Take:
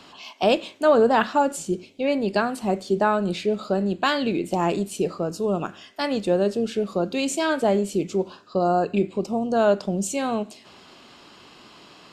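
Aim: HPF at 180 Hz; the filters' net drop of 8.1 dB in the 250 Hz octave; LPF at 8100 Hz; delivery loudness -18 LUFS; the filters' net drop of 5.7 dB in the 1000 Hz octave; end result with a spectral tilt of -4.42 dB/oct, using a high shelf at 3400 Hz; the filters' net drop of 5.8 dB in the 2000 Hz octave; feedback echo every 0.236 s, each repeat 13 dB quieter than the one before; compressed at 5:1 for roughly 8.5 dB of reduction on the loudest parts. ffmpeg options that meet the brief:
-af "highpass=180,lowpass=8.1k,equalizer=f=250:t=o:g=-9,equalizer=f=1k:t=o:g=-6,equalizer=f=2k:t=o:g=-4,highshelf=f=3.4k:g=-5,acompressor=threshold=-27dB:ratio=5,aecho=1:1:236|472|708:0.224|0.0493|0.0108,volume=14.5dB"

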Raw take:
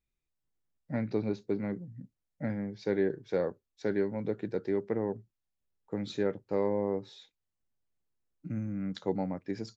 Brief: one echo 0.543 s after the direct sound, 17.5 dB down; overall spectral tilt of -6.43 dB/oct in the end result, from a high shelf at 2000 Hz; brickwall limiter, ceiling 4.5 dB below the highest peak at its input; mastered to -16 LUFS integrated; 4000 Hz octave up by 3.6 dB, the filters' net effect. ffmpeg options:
-af "highshelf=f=2k:g=-3,equalizer=f=4k:t=o:g=6.5,alimiter=limit=-22dB:level=0:latency=1,aecho=1:1:543:0.133,volume=19.5dB"

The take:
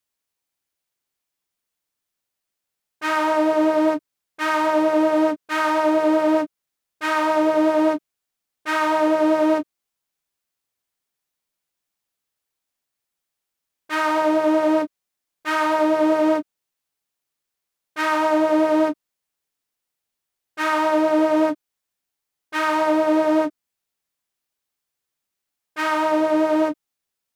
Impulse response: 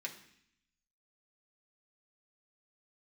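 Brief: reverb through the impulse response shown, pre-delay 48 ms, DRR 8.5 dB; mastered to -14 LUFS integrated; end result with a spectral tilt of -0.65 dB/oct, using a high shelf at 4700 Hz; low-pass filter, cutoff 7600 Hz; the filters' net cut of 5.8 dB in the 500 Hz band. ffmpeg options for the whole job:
-filter_complex "[0:a]lowpass=7.6k,equalizer=f=500:t=o:g=-8.5,highshelf=f=4.7k:g=5.5,asplit=2[a][b];[1:a]atrim=start_sample=2205,adelay=48[c];[b][c]afir=irnorm=-1:irlink=0,volume=-8dB[d];[a][d]amix=inputs=2:normalize=0,volume=9dB"

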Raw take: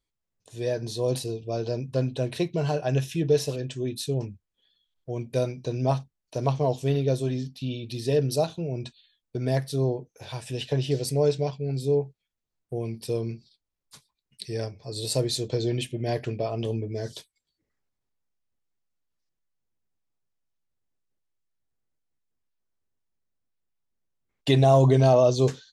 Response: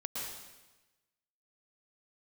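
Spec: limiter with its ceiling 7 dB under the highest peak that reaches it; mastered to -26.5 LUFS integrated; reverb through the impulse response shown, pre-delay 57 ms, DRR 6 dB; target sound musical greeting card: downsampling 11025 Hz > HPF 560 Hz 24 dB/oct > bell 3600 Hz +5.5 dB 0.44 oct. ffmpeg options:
-filter_complex "[0:a]alimiter=limit=-14.5dB:level=0:latency=1,asplit=2[a][b];[1:a]atrim=start_sample=2205,adelay=57[c];[b][c]afir=irnorm=-1:irlink=0,volume=-8dB[d];[a][d]amix=inputs=2:normalize=0,aresample=11025,aresample=44100,highpass=f=560:w=0.5412,highpass=f=560:w=1.3066,equalizer=f=3.6k:t=o:w=0.44:g=5.5,volume=6.5dB"

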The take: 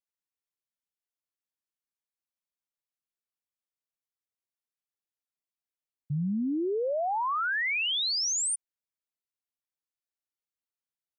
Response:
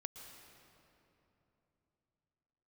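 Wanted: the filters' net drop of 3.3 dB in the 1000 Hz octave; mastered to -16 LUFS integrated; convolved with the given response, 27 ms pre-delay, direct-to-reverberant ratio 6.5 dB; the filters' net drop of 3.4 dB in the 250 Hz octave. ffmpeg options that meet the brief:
-filter_complex "[0:a]equalizer=f=250:t=o:g=-4.5,equalizer=f=1k:t=o:g=-4,asplit=2[a][b];[1:a]atrim=start_sample=2205,adelay=27[c];[b][c]afir=irnorm=-1:irlink=0,volume=-3dB[d];[a][d]amix=inputs=2:normalize=0,volume=12dB"

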